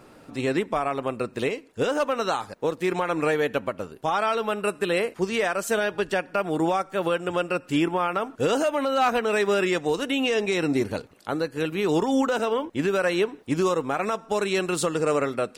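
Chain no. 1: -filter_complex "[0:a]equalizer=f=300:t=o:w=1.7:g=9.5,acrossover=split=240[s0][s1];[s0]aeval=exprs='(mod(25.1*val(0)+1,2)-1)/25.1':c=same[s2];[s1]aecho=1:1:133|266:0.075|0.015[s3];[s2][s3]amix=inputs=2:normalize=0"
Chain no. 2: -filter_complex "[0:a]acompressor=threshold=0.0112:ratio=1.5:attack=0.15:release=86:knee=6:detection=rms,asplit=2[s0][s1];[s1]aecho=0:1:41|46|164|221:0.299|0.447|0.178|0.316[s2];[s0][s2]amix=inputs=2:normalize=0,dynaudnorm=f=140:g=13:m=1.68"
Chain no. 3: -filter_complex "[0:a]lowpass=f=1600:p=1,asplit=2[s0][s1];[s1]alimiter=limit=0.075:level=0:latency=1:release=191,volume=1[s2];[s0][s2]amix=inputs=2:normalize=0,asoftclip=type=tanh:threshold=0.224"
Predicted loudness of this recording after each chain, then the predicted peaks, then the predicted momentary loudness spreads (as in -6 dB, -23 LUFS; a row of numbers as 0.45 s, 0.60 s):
-20.5 LUFS, -27.0 LUFS, -24.0 LUFS; -6.5 dBFS, -13.0 dBFS, -14.5 dBFS; 6 LU, 6 LU, 5 LU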